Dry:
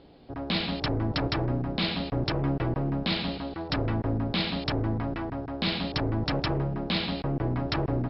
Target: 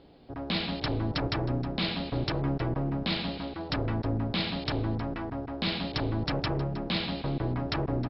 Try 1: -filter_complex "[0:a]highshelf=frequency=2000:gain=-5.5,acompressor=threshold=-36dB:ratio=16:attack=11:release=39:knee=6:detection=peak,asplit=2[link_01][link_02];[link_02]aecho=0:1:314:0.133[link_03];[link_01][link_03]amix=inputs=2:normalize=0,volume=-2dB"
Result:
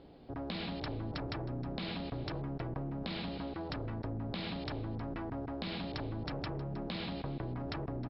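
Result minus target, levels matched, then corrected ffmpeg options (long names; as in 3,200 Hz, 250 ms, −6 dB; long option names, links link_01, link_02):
downward compressor: peak gain reduction +12 dB; 4,000 Hz band −2.5 dB
-filter_complex "[0:a]asplit=2[link_01][link_02];[link_02]aecho=0:1:314:0.133[link_03];[link_01][link_03]amix=inputs=2:normalize=0,volume=-2dB"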